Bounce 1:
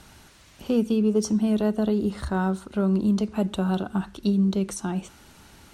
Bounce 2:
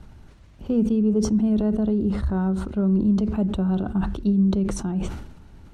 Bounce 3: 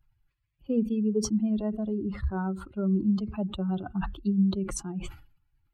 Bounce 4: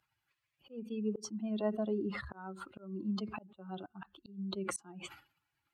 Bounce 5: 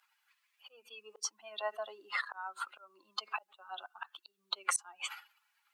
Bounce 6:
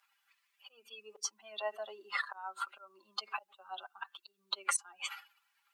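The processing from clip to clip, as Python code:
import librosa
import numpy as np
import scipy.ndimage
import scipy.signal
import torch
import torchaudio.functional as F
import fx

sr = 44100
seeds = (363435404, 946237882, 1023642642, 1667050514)

y1 = fx.tilt_eq(x, sr, slope=-3.5)
y1 = fx.sustainer(y1, sr, db_per_s=57.0)
y1 = y1 * librosa.db_to_amplitude(-6.0)
y2 = fx.bin_expand(y1, sr, power=2.0)
y2 = fx.tilt_shelf(y2, sr, db=-3.0, hz=720.0)
y3 = fx.weighting(y2, sr, curve='A')
y3 = fx.auto_swell(y3, sr, attack_ms=530.0)
y3 = y3 * librosa.db_to_amplitude(4.0)
y4 = scipy.signal.sosfilt(scipy.signal.butter(4, 870.0, 'highpass', fs=sr, output='sos'), y3)
y4 = y4 * librosa.db_to_amplitude(8.5)
y5 = y4 + 0.65 * np.pad(y4, (int(5.1 * sr / 1000.0), 0))[:len(y4)]
y5 = y5 * librosa.db_to_amplitude(-1.5)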